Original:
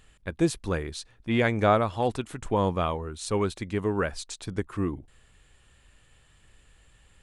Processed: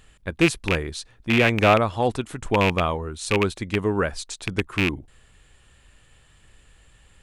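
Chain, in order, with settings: rattling part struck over -30 dBFS, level -13 dBFS; gain +4 dB

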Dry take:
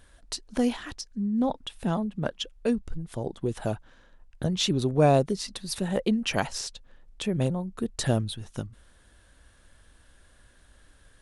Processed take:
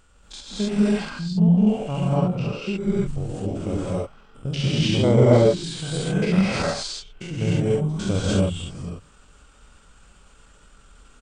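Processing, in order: stepped spectrum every 0.1 s; non-linear reverb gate 0.32 s rising, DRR -7.5 dB; pitch shift -3 st

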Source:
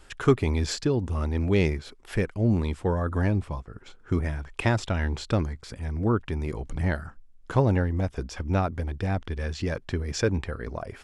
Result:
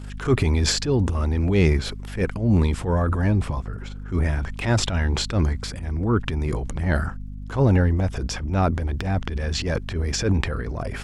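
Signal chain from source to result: transient shaper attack -11 dB, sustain +8 dB; hum 50 Hz, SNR 12 dB; gain +5 dB

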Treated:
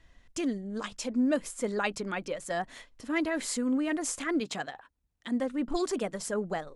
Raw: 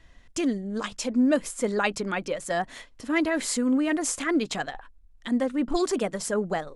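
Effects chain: 4.4–5.4 HPF 100 Hz 12 dB/oct; gain -5 dB

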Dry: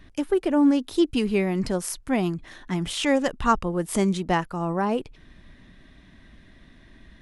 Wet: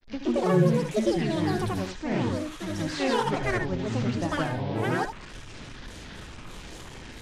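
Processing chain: delta modulation 32 kbps, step -32.5 dBFS; grains 0.259 s, grains 25/s, pitch spread up and down by 12 st; on a send: reverb, pre-delay 67 ms, DRR 6.5 dB; on the sum: gain +3 dB

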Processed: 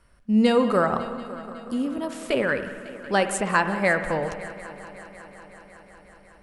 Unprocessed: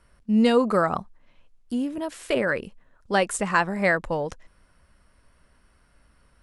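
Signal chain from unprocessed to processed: multi-head echo 0.184 s, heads first and third, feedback 70%, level -19 dB; spring tank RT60 1.6 s, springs 56 ms, chirp 75 ms, DRR 9 dB

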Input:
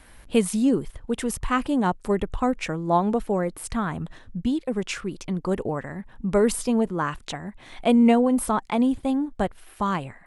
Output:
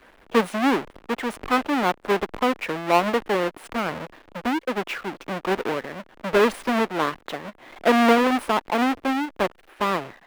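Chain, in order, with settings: half-waves squared off; three-band isolator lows -18 dB, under 260 Hz, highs -15 dB, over 3300 Hz

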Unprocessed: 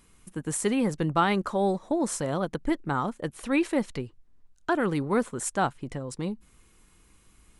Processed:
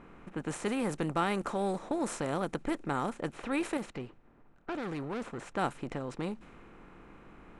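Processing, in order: per-bin compression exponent 0.6; 3.77–5.52 tube stage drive 23 dB, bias 0.45; low-pass opened by the level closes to 1600 Hz, open at -18.5 dBFS; gain -9 dB

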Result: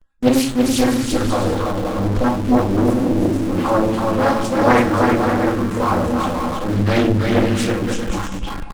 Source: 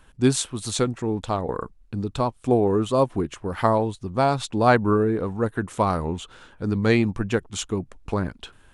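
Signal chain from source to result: random spectral dropouts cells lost 29%; comb 3.7 ms, depth 83%; spectral gain 2.58–3.48, 440–6400 Hz -25 dB; bouncing-ball echo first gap 0.33 s, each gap 0.6×, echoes 5; shoebox room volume 48 m³, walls mixed, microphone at 2.6 m; dynamic EQ 110 Hz, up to +5 dB, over -23 dBFS, Q 1.8; in parallel at -11.5 dB: Schmitt trigger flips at -23 dBFS; on the sum: gate with hold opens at -7 dBFS; Doppler distortion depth 0.93 ms; gain -11.5 dB

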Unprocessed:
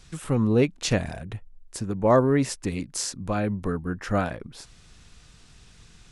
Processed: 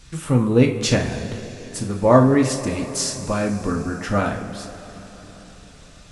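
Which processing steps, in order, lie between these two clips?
two-slope reverb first 0.34 s, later 4.8 s, from -18 dB, DRR 1 dB; gain +3 dB

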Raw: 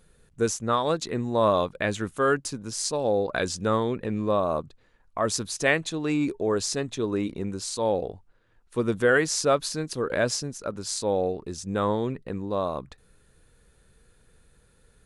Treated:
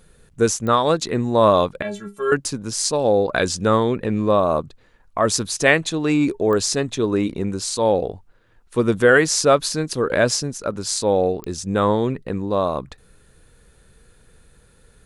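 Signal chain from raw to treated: 1.82–2.32 metallic resonator 200 Hz, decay 0.22 s, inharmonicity 0.008; pops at 0.67/6.53/11.44, -23 dBFS; gain +7 dB

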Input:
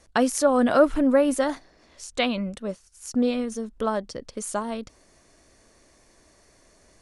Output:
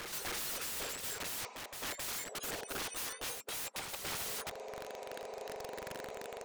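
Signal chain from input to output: spectrum mirrored in octaves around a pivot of 2000 Hz; LPF 6200 Hz 24 dB/oct; low shelf 400 Hz +9 dB; transient shaper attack +7 dB, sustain -2 dB; reverse; compressor 6:1, threshold -39 dBFS, peak gain reduction 27 dB; reverse; wrapped overs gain 44 dB; on a send: reverse echo 0.291 s -5 dB; on the sum: speed mistake 44.1 kHz file played as 48 kHz; gain +9 dB

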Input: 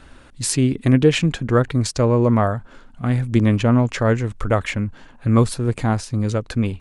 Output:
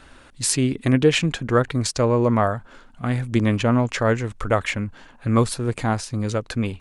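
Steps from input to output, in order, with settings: low shelf 360 Hz -6 dB; gain +1 dB

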